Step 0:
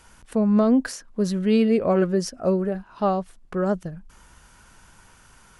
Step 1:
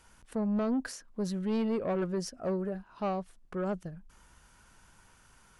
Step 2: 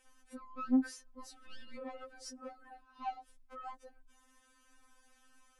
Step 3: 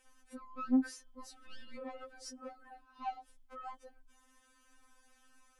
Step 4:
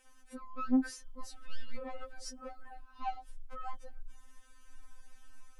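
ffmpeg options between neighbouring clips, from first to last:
ffmpeg -i in.wav -af "asoftclip=type=tanh:threshold=-17dB,volume=-8dB" out.wav
ffmpeg -i in.wav -af "afftfilt=real='re*3.46*eq(mod(b,12),0)':imag='im*3.46*eq(mod(b,12),0)':win_size=2048:overlap=0.75,volume=-4dB" out.wav
ffmpeg -i in.wav -af "bandreject=frequency=281.1:width_type=h:width=4,bandreject=frequency=562.2:width_type=h:width=4,bandreject=frequency=843.3:width_type=h:width=4,bandreject=frequency=1124.4:width_type=h:width=4,bandreject=frequency=1405.5:width_type=h:width=4,bandreject=frequency=1686.6:width_type=h:width=4,bandreject=frequency=1967.7:width_type=h:width=4,bandreject=frequency=2248.8:width_type=h:width=4,bandreject=frequency=2529.9:width_type=h:width=4,bandreject=frequency=2811:width_type=h:width=4,bandreject=frequency=3092.1:width_type=h:width=4,bandreject=frequency=3373.2:width_type=h:width=4,bandreject=frequency=3654.3:width_type=h:width=4,bandreject=frequency=3935.4:width_type=h:width=4,bandreject=frequency=4216.5:width_type=h:width=4,bandreject=frequency=4497.6:width_type=h:width=4" out.wav
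ffmpeg -i in.wav -af "asubboost=boost=9:cutoff=100,volume=2.5dB" out.wav

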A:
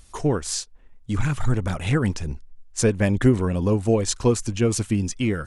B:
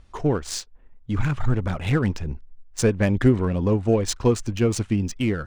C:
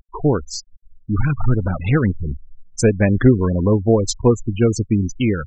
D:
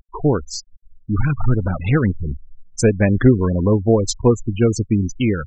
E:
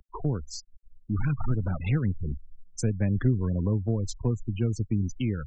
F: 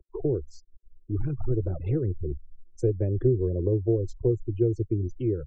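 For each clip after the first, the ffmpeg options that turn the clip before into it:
ffmpeg -i in.wav -af "adynamicsmooth=sensitivity=4.5:basefreq=2800" out.wav
ffmpeg -i in.wav -af "afftfilt=real='re*gte(hypot(re,im),0.0562)':imag='im*gte(hypot(re,im),0.0562)':win_size=1024:overlap=0.75,volume=5dB" out.wav
ffmpeg -i in.wav -af anull out.wav
ffmpeg -i in.wav -filter_complex "[0:a]acrossover=split=200[link_01][link_02];[link_02]acompressor=threshold=-29dB:ratio=4[link_03];[link_01][link_03]amix=inputs=2:normalize=0,acrossover=split=150[link_04][link_05];[link_04]asoftclip=type=tanh:threshold=-15dB[link_06];[link_06][link_05]amix=inputs=2:normalize=0,volume=-6dB" out.wav
ffmpeg -i in.wav -af "firequalizer=gain_entry='entry(120,0);entry(220,-14);entry(350,13);entry(980,-16)':delay=0.05:min_phase=1" out.wav

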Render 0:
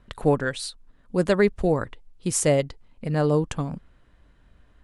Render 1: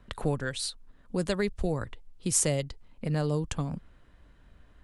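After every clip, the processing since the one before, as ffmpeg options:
ffmpeg -i in.wav -filter_complex "[0:a]acrossover=split=130|3000[link_01][link_02][link_03];[link_02]acompressor=threshold=-32dB:ratio=2.5[link_04];[link_01][link_04][link_03]amix=inputs=3:normalize=0" out.wav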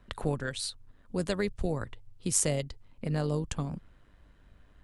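ffmpeg -i in.wav -af "tremolo=f=100:d=0.4" out.wav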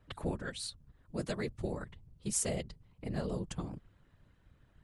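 ffmpeg -i in.wav -af "afftfilt=real='hypot(re,im)*cos(2*PI*random(0))':imag='hypot(re,im)*sin(2*PI*random(1))':win_size=512:overlap=0.75" out.wav

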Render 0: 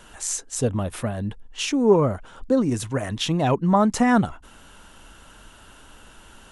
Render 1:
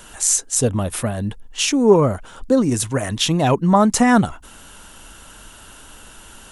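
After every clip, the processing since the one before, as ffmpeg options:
ffmpeg -i in.wav -af "highshelf=frequency=5800:gain=10,volume=4dB" out.wav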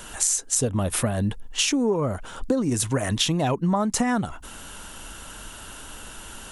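ffmpeg -i in.wav -af "acompressor=threshold=-21dB:ratio=16,volume=2dB" out.wav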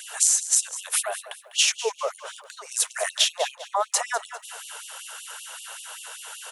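ffmpeg -i in.wav -af "aecho=1:1:200|400|600:0.188|0.0659|0.0231,afftfilt=real='re*gte(b*sr/1024,400*pow(2700/400,0.5+0.5*sin(2*PI*5.2*pts/sr)))':imag='im*gte(b*sr/1024,400*pow(2700/400,0.5+0.5*sin(2*PI*5.2*pts/sr)))':win_size=1024:overlap=0.75,volume=3dB" out.wav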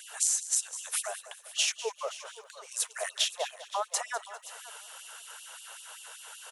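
ffmpeg -i in.wav -af "aecho=1:1:522|1044:0.141|0.024,volume=-7.5dB" out.wav

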